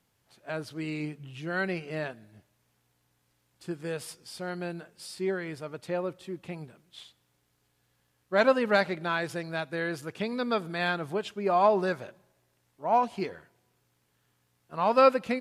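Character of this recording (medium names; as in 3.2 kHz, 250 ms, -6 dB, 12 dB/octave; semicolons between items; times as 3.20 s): noise floor -73 dBFS; spectral tilt -3.5 dB/octave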